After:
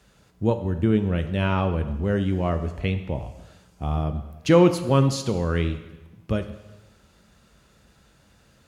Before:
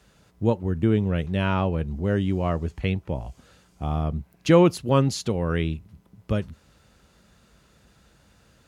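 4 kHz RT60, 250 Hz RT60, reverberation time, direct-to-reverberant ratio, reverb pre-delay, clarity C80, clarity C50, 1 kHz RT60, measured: 1.0 s, 1.2 s, 1.1 s, 8.5 dB, 6 ms, 13.0 dB, 11.0 dB, 1.1 s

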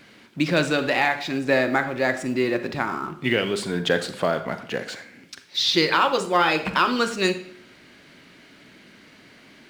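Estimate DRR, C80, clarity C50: 9.5 dB, 15.0 dB, 11.5 dB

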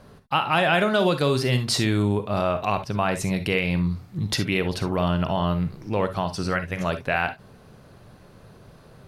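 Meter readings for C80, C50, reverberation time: 60.0 dB, 11.5 dB, non-exponential decay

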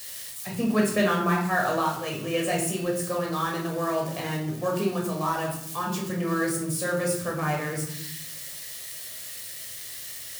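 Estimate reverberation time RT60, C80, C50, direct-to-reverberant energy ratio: 0.70 s, 9.0 dB, 5.5 dB, −2.0 dB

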